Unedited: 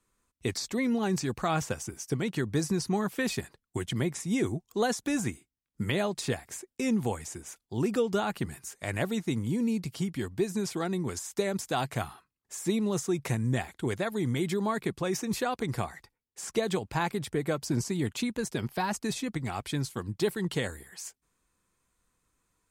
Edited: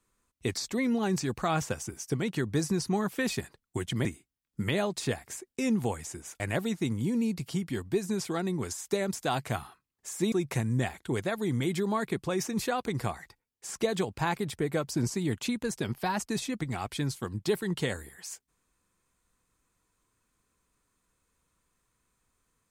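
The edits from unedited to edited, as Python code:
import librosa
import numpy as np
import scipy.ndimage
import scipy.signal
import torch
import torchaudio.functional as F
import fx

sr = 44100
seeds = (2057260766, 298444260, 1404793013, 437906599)

y = fx.edit(x, sr, fx.cut(start_s=4.05, length_s=1.21),
    fx.cut(start_s=7.61, length_s=1.25),
    fx.cut(start_s=12.78, length_s=0.28), tone=tone)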